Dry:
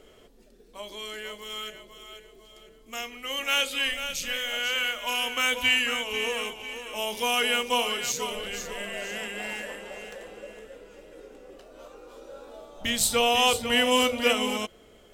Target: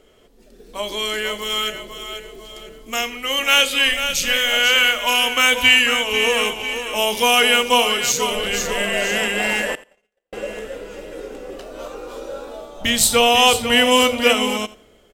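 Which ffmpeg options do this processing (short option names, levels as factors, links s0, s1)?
-filter_complex "[0:a]asettb=1/sr,asplit=3[s0][s1][s2];[s0]atrim=end=9.754[s3];[s1]atrim=start=9.75:end=10.33,asetpts=PTS-STARTPTS,afade=t=in:d=0.004:c=qsin,afade=t=out:st=0.576:d=0.004:c=qsin,agate=range=0.00178:threshold=0.02:ratio=16:detection=peak[s4];[s2]atrim=start=10.326[s5];[s3][s4]acrossfade=d=0.004:c1=hsin:c2=qsin[s6];[s6][s5]acrossfade=d=0.004:c1=qsin:c2=hsin,dynaudnorm=f=100:g=11:m=5.01,aecho=1:1:85|170:0.112|0.0168"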